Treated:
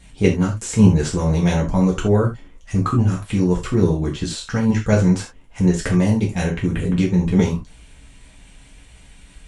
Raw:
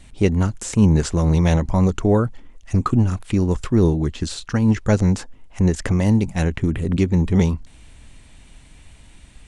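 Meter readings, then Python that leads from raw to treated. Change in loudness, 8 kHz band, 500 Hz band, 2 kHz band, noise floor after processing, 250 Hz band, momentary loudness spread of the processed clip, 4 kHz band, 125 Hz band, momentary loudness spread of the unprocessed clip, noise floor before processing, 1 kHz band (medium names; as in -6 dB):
+0.5 dB, +2.0 dB, +1.5 dB, +2.5 dB, -47 dBFS, +1.0 dB, 7 LU, +2.0 dB, 0.0 dB, 6 LU, -46 dBFS, +0.5 dB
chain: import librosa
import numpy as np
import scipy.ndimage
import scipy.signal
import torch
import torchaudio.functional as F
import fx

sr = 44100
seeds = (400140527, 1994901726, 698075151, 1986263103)

p1 = fx.level_steps(x, sr, step_db=13)
p2 = x + (p1 * 10.0 ** (0.0 / 20.0))
p3 = fx.rev_gated(p2, sr, seeds[0], gate_ms=110, shape='falling', drr_db=-3.0)
y = p3 * 10.0 ** (-6.0 / 20.0)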